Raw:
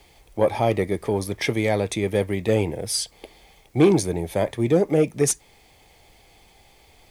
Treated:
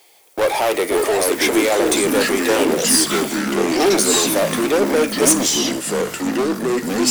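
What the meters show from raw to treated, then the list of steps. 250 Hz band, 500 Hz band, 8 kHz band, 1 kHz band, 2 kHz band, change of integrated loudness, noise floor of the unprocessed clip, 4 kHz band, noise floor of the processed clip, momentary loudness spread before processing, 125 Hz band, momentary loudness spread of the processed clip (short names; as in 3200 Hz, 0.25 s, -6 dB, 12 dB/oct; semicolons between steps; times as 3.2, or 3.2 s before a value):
+6.0 dB, +5.5 dB, +13.0 dB, +9.0 dB, +11.0 dB, +6.0 dB, -55 dBFS, +13.0 dB, -37 dBFS, 7 LU, -6.5 dB, 7 LU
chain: one-sided fold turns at -14 dBFS; HPF 360 Hz 24 dB/oct; gate -49 dBFS, range -40 dB; high shelf 7000 Hz +12 dB; power-law curve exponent 0.5; echoes that change speed 0.43 s, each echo -4 st, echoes 3; gain -1.5 dB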